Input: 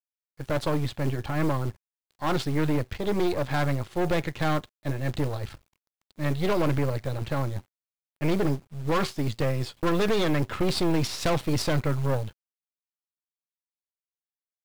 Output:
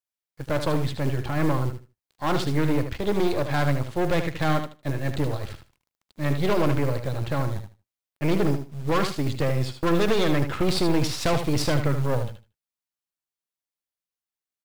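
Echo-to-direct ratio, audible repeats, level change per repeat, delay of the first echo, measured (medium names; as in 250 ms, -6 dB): -8.5 dB, 2, -15.0 dB, 77 ms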